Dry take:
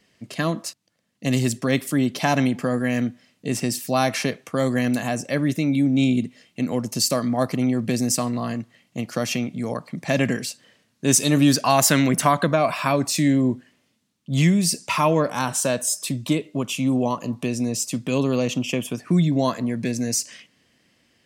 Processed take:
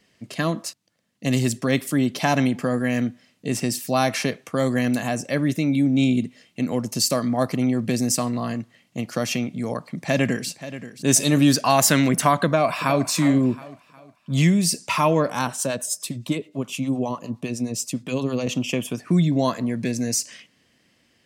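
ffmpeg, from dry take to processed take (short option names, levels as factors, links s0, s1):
-filter_complex "[0:a]asplit=2[s0][s1];[s1]afade=t=in:st=9.93:d=0.01,afade=t=out:st=10.49:d=0.01,aecho=0:1:530|1060|1590|2120|2650|3180:0.211349|0.116242|0.063933|0.0351632|0.0193397|0.0106369[s2];[s0][s2]amix=inputs=2:normalize=0,asplit=2[s3][s4];[s4]afade=t=in:st=12.45:d=0.01,afade=t=out:st=13.07:d=0.01,aecho=0:1:360|720|1080|1440:0.237137|0.0948549|0.037942|0.0151768[s5];[s3][s5]amix=inputs=2:normalize=0,asettb=1/sr,asplit=3[s6][s7][s8];[s6]atrim=end=15.474[s9];[s7]atrim=start=15.47:end=18.47,asetpts=PTS-STARTPTS,afade=t=in:d=0.004:c=qsin,afade=t=out:st=2.996:d=0.004:c=qsin,acrossover=split=650[s10][s11];[s10]aeval=exprs='val(0)*(1-0.7/2+0.7/2*cos(2*PI*9.7*n/s))':c=same[s12];[s11]aeval=exprs='val(0)*(1-0.7/2-0.7/2*cos(2*PI*9.7*n/s))':c=same[s13];[s12][s13]amix=inputs=2:normalize=0[s14];[s8]atrim=start=18.466[s15];[s9][s14]acrossfade=d=0.004:c1=hsin:c2=qsin[s16];[s16][s15]acrossfade=d=0.004:c1=qsin:c2=hsin"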